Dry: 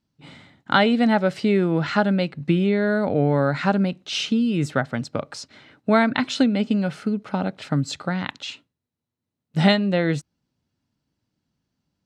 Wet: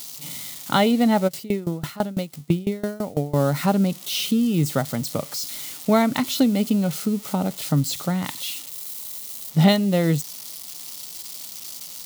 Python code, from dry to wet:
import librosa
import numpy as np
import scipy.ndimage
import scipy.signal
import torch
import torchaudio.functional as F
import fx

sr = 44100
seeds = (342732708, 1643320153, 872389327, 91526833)

y = x + 0.5 * 10.0 ** (-23.0 / 20.0) * np.diff(np.sign(x), prepend=np.sign(x[:1]))
y = fx.graphic_eq_31(y, sr, hz=(160, 1600, 2500), db=(5, -11, -4))
y = fx.tremolo_decay(y, sr, direction='decaying', hz=6.0, depth_db=22, at=(1.27, 3.34), fade=0.02)